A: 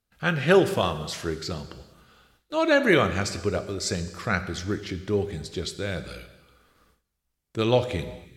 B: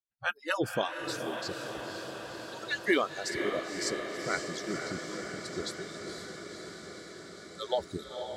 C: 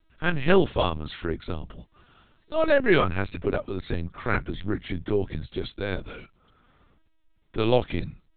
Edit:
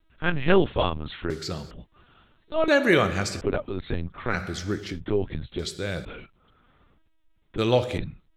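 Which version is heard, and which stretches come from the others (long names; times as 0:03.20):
C
0:01.30–0:01.71: punch in from A
0:02.68–0:03.41: punch in from A
0:04.34–0:04.96: punch in from A, crossfade 0.10 s
0:05.59–0:06.05: punch in from A
0:07.58–0:07.98: punch in from A
not used: B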